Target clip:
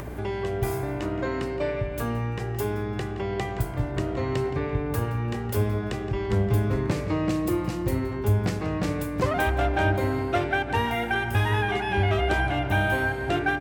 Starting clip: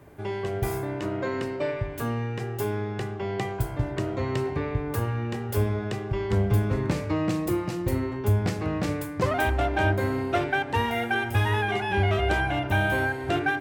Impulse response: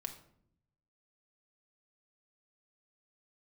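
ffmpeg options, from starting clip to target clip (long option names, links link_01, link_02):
-filter_complex "[0:a]asplit=2[link_01][link_02];[link_02]adelay=170,lowpass=frequency=4500:poles=1,volume=-12.5dB,asplit=2[link_03][link_04];[link_04]adelay=170,lowpass=frequency=4500:poles=1,volume=0.48,asplit=2[link_05][link_06];[link_06]adelay=170,lowpass=frequency=4500:poles=1,volume=0.48,asplit=2[link_07][link_08];[link_08]adelay=170,lowpass=frequency=4500:poles=1,volume=0.48,asplit=2[link_09][link_10];[link_10]adelay=170,lowpass=frequency=4500:poles=1,volume=0.48[link_11];[link_01][link_03][link_05][link_07][link_09][link_11]amix=inputs=6:normalize=0,acompressor=mode=upward:threshold=-26dB:ratio=2.5,aeval=exprs='val(0)+0.0126*(sin(2*PI*60*n/s)+sin(2*PI*2*60*n/s)/2+sin(2*PI*3*60*n/s)/3+sin(2*PI*4*60*n/s)/4+sin(2*PI*5*60*n/s)/5)':channel_layout=same"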